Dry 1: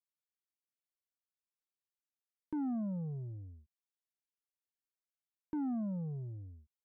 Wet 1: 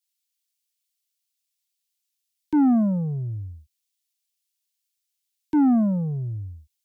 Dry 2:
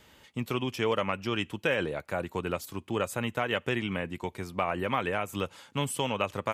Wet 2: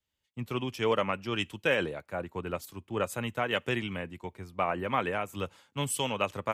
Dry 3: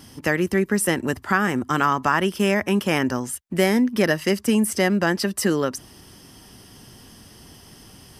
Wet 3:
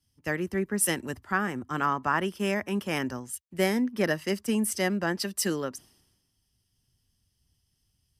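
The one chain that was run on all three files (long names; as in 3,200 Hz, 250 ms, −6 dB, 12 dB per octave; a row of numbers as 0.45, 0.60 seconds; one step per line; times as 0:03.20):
multiband upward and downward expander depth 100%
normalise the peak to −12 dBFS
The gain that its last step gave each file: +16.5, −1.0, −8.0 decibels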